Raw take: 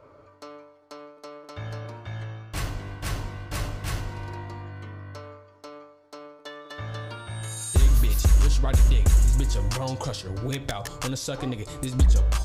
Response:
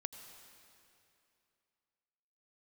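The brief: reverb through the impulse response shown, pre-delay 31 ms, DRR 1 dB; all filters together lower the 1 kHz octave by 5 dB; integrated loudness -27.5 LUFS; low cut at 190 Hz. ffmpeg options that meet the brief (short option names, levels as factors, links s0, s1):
-filter_complex "[0:a]highpass=190,equalizer=f=1000:t=o:g=-6.5,asplit=2[s0][s1];[1:a]atrim=start_sample=2205,adelay=31[s2];[s1][s2]afir=irnorm=-1:irlink=0,volume=1.12[s3];[s0][s3]amix=inputs=2:normalize=0,volume=1.78"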